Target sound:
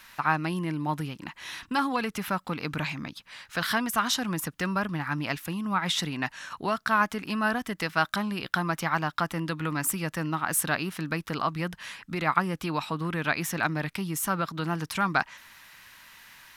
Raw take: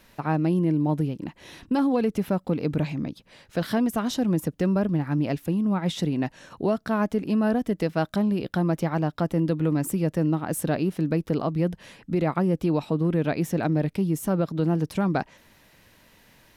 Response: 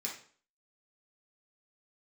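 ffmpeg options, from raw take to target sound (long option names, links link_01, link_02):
-af "lowshelf=frequency=780:width_type=q:width=1.5:gain=-13.5,volume=6.5dB"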